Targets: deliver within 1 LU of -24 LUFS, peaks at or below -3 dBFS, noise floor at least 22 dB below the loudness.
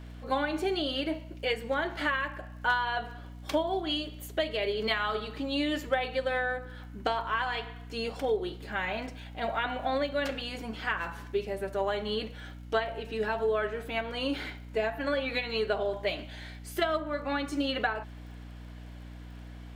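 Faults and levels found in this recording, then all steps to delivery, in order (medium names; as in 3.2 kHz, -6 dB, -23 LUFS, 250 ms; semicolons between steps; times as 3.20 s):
tick rate 40 per s; hum 60 Hz; highest harmonic 300 Hz; hum level -42 dBFS; loudness -31.5 LUFS; peak level -15.0 dBFS; loudness target -24.0 LUFS
-> de-click; de-hum 60 Hz, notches 5; trim +7.5 dB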